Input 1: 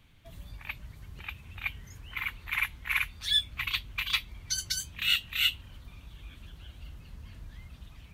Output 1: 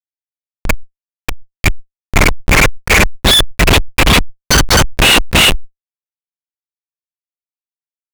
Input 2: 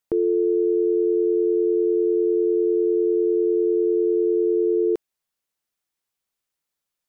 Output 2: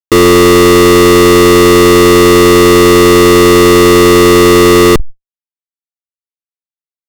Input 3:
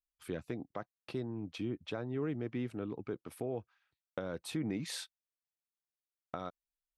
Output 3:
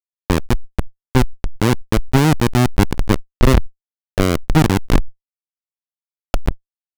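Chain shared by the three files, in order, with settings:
comparator with hysteresis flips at −31.5 dBFS
high-shelf EQ 5,200 Hz −7.5 dB
downward expander −57 dBFS
fuzz pedal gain 48 dB, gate −47 dBFS
level that may fall only so fast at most 77 dB per second
normalise the peak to −1.5 dBFS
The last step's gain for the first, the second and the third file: +6.5, +9.0, +6.5 decibels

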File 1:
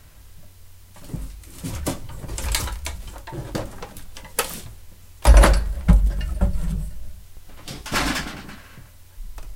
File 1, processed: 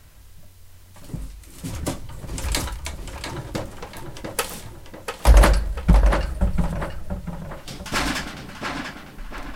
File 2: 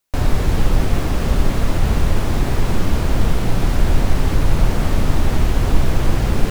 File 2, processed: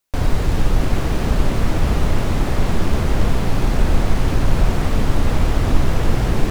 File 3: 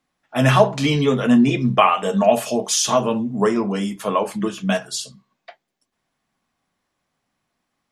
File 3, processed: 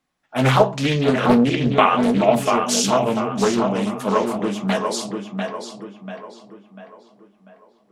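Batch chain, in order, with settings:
tape delay 693 ms, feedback 47%, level −3.5 dB, low-pass 2,900 Hz
highs frequency-modulated by the lows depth 0.52 ms
level −1 dB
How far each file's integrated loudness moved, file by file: −1.5, −0.5, −0.5 LU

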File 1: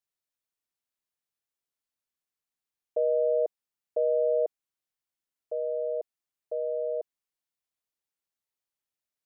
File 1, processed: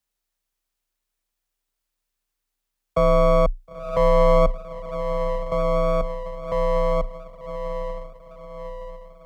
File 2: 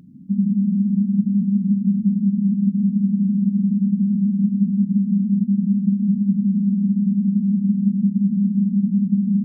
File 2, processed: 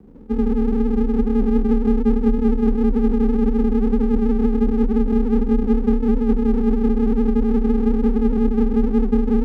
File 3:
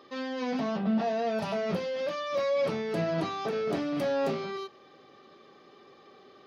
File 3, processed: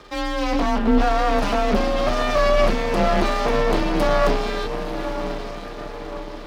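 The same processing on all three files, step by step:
feedback delay with all-pass diffusion 967 ms, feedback 50%, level −9 dB
half-wave rectification
frequency shifter +30 Hz
normalise the peak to −6 dBFS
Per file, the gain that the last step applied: +12.0, +3.5, +14.0 decibels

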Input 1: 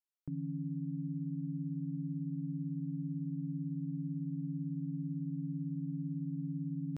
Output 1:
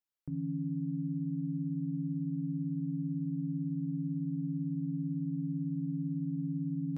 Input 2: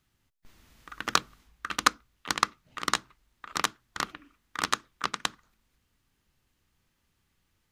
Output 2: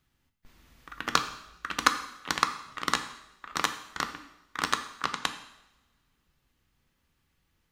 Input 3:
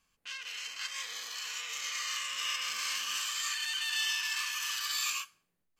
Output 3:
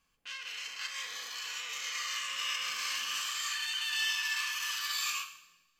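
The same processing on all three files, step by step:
parametric band 8,500 Hz −3.5 dB 1.5 octaves
coupled-rooms reverb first 0.83 s, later 2.2 s, from −23 dB, DRR 7 dB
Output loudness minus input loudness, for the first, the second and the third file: +3.5, 0.0, −0.5 LU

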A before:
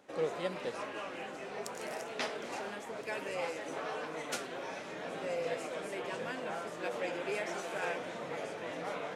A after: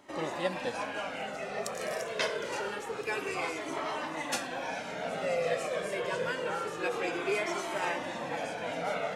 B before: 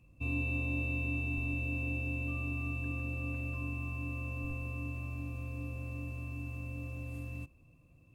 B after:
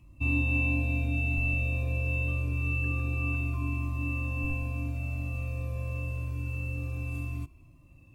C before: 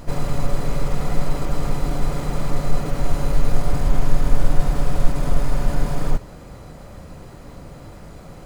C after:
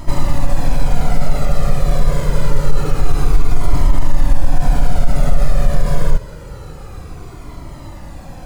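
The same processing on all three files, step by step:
boost into a limiter +10 dB
flanger whose copies keep moving one way falling 0.26 Hz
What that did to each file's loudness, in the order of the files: +5.0, +6.5, +5.5 LU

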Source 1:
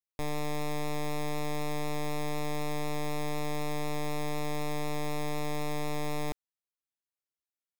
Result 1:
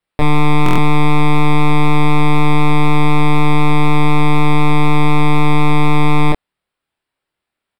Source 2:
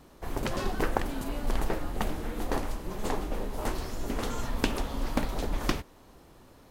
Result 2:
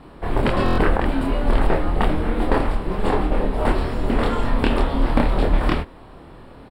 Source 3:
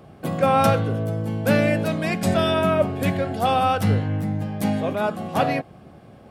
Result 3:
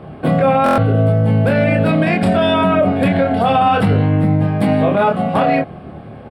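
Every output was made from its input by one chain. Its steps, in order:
moving average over 7 samples
double-tracking delay 26 ms −2 dB
boost into a limiter +15.5 dB
buffer that repeats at 0:00.64, samples 1,024, times 5
normalise the peak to −6 dBFS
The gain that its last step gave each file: +4.0, −5.0, −5.0 decibels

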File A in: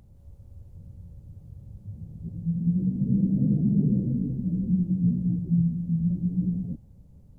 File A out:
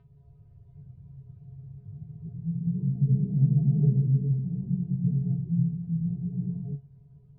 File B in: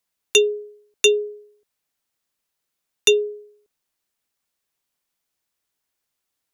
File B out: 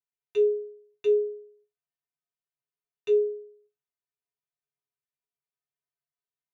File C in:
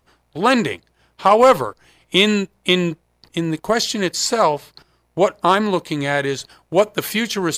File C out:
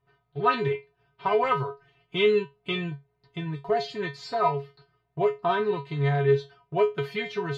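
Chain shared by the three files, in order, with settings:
high-frequency loss of the air 330 metres
notch filter 480 Hz, Q 13
tuned comb filter 140 Hz, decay 0.2 s, harmonics odd, mix 100%
loudness normalisation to −27 LKFS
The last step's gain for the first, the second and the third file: +11.0, −1.5, +5.5 decibels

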